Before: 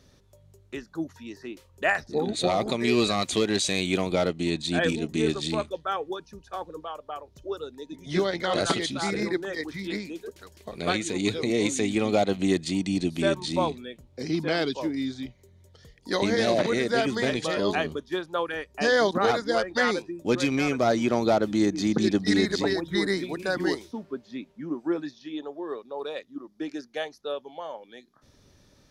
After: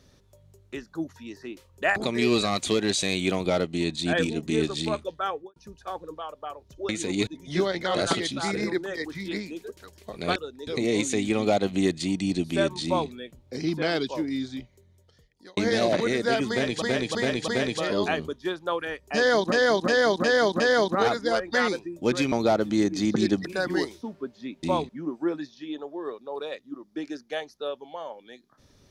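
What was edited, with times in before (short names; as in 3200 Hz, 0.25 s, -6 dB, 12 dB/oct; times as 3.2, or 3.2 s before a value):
1.96–2.62 cut
5.95–6.22 studio fade out
7.55–7.86 swap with 10.95–11.33
13.51–13.77 copy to 24.53
15.21–16.23 fade out
17.15–17.48 loop, 4 plays
18.83–19.19 loop, 5 plays
20.55–21.14 cut
22.27–23.35 cut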